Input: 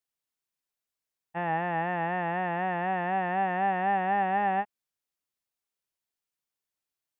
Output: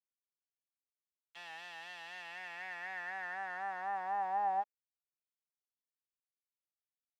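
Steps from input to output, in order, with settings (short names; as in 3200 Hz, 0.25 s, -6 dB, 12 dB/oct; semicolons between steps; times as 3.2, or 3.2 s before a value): sample gate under -35.5 dBFS; band-pass sweep 3100 Hz -> 700 Hz, 2.04–4.92; gain -4.5 dB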